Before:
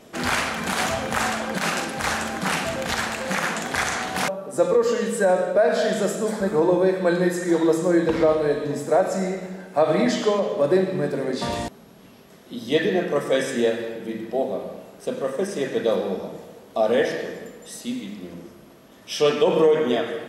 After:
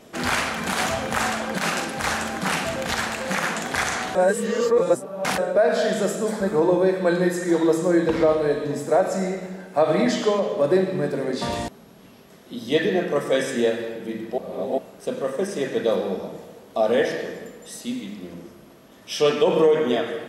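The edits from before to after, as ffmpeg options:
ffmpeg -i in.wav -filter_complex "[0:a]asplit=5[link_01][link_02][link_03][link_04][link_05];[link_01]atrim=end=4.152[link_06];[link_02]atrim=start=4.148:end=5.382,asetpts=PTS-STARTPTS,areverse[link_07];[link_03]atrim=start=5.378:end=14.382[link_08];[link_04]atrim=start=14.378:end=14.782,asetpts=PTS-STARTPTS,areverse[link_09];[link_05]atrim=start=14.778[link_10];[link_06][link_07]acrossfade=duration=0.004:curve1=hsin:curve2=hsin[link_11];[link_11][link_08]acrossfade=duration=0.004:curve1=hsin:curve2=hsin[link_12];[link_12][link_09]acrossfade=duration=0.004:curve1=hsin:curve2=hsin[link_13];[link_13][link_10]acrossfade=duration=0.004:curve1=hsin:curve2=hsin" out.wav

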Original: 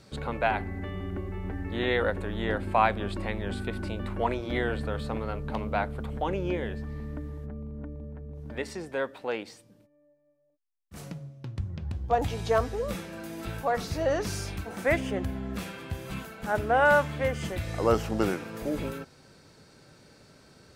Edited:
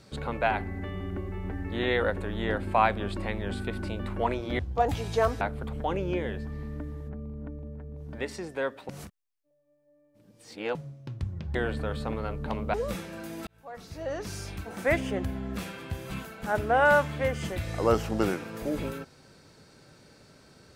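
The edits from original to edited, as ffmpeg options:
ffmpeg -i in.wav -filter_complex "[0:a]asplit=8[link_01][link_02][link_03][link_04][link_05][link_06][link_07][link_08];[link_01]atrim=end=4.592[link_09];[link_02]atrim=start=11.918:end=12.742[link_10];[link_03]atrim=start=5.778:end=9.262[link_11];[link_04]atrim=start=9.258:end=11.122,asetpts=PTS-STARTPTS,areverse[link_12];[link_05]atrim=start=11.118:end=11.922[link_13];[link_06]atrim=start=4.588:end=5.782[link_14];[link_07]atrim=start=12.738:end=13.47,asetpts=PTS-STARTPTS,afade=type=out:start_time=0.728:duration=0.004:curve=hsin[link_15];[link_08]atrim=start=13.47,asetpts=PTS-STARTPTS,afade=type=in:duration=1.45[link_16];[link_09][link_10]acrossfade=duration=0.004:curve1=hsin:curve2=hsin[link_17];[link_17][link_11]acrossfade=duration=0.004:curve1=hsin:curve2=hsin[link_18];[link_18][link_12]acrossfade=duration=0.004:curve1=hsin:curve2=hsin[link_19];[link_19][link_13]acrossfade=duration=0.004:curve1=hsin:curve2=hsin[link_20];[link_20][link_14]acrossfade=duration=0.004:curve1=hsin:curve2=hsin[link_21];[link_15][link_16]concat=n=2:v=0:a=1[link_22];[link_21][link_22]acrossfade=duration=0.004:curve1=hsin:curve2=hsin" out.wav

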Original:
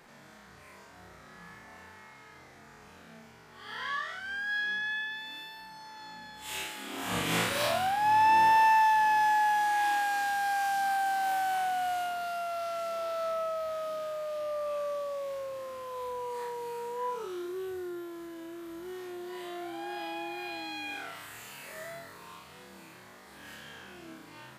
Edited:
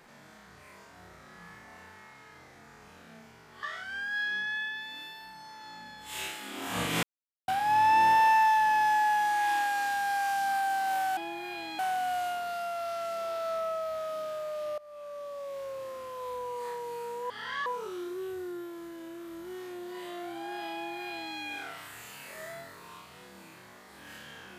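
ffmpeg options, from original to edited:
ffmpeg -i in.wav -filter_complex "[0:a]asplit=9[link_01][link_02][link_03][link_04][link_05][link_06][link_07][link_08][link_09];[link_01]atrim=end=3.632[link_10];[link_02]atrim=start=3.988:end=7.39,asetpts=PTS-STARTPTS,afade=type=out:start_time=3.398:duration=0.004:curve=hsin[link_11];[link_03]atrim=start=7.39:end=7.84,asetpts=PTS-STARTPTS,volume=0[link_12];[link_04]atrim=start=7.84:end=11.532,asetpts=PTS-STARTPTS,afade=type=in:duration=0.004:curve=hsin[link_13];[link_05]atrim=start=20.108:end=20.732[link_14];[link_06]atrim=start=11.528:end=14.52,asetpts=PTS-STARTPTS,afade=type=out:start_time=2.988:duration=0.004:curve=hsin:silence=0.0891251[link_15];[link_07]atrim=start=14.52:end=17.042,asetpts=PTS-STARTPTS,afade=type=in:duration=1.01:silence=0.0891251[link_16];[link_08]atrim=start=3.628:end=3.992[link_17];[link_09]atrim=start=17.038[link_18];[link_11][link_12][link_13]concat=n=3:v=0:a=1[link_19];[link_10][link_19]acrossfade=duration=0.004:curve1=hsin:curve2=hsin[link_20];[link_20][link_14]acrossfade=duration=0.004:curve1=hsin:curve2=hsin[link_21];[link_15][link_16]concat=n=2:v=0:a=1[link_22];[link_21][link_22]acrossfade=duration=0.004:curve1=hsin:curve2=hsin[link_23];[link_23][link_17]acrossfade=duration=0.004:curve1=hsin:curve2=hsin[link_24];[link_24][link_18]acrossfade=duration=0.004:curve1=hsin:curve2=hsin" out.wav

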